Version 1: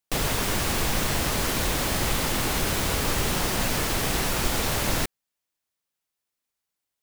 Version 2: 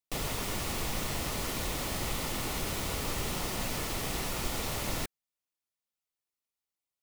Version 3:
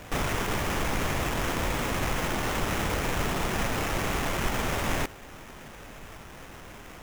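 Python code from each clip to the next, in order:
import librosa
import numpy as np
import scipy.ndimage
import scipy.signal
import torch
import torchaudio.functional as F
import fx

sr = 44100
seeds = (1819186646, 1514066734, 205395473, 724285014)

y1 = fx.notch(x, sr, hz=1600.0, q=8.4)
y1 = y1 * 10.0 ** (-8.5 / 20.0)
y2 = fx.dmg_noise_colour(y1, sr, seeds[0], colour='pink', level_db=-50.0)
y2 = fx.sample_hold(y2, sr, seeds[1], rate_hz=4400.0, jitter_pct=20)
y2 = y2 * 10.0 ** (5.5 / 20.0)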